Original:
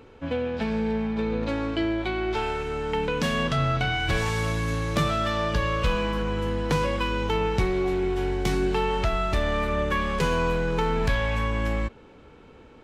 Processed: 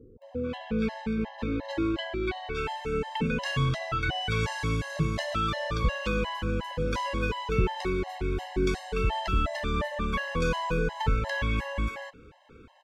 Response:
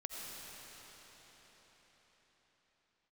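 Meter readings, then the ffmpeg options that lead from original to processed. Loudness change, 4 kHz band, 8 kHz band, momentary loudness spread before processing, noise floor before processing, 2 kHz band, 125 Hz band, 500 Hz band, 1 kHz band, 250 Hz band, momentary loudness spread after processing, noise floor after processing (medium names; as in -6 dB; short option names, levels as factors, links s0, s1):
-4.0 dB, -3.5 dB, -5.0 dB, 3 LU, -50 dBFS, -3.5 dB, -3.0 dB, -5.5 dB, -4.0 dB, -3.5 dB, 5 LU, -52 dBFS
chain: -filter_complex "[0:a]acrossover=split=540[s0][s1];[s1]adelay=220[s2];[s0][s2]amix=inputs=2:normalize=0,acrossover=split=7800[s3][s4];[s4]acompressor=threshold=0.00141:ratio=4:attack=1:release=60[s5];[s3][s5]amix=inputs=2:normalize=0,afftfilt=real='re*gt(sin(2*PI*2.8*pts/sr)*(1-2*mod(floor(b*sr/1024/540),2)),0)':imag='im*gt(sin(2*PI*2.8*pts/sr)*(1-2*mod(floor(b*sr/1024/540),2)),0)':win_size=1024:overlap=0.75"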